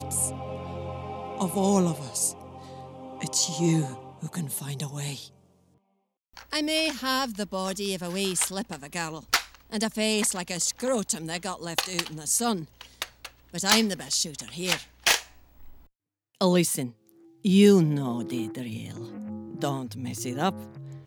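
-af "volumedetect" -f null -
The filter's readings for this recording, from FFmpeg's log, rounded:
mean_volume: -28.4 dB
max_volume: -5.7 dB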